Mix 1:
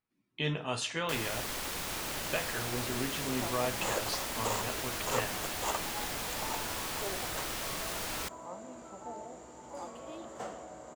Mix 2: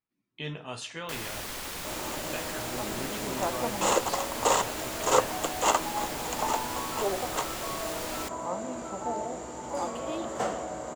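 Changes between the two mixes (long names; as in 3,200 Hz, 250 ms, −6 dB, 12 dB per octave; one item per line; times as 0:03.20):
speech −4.0 dB
second sound +11.0 dB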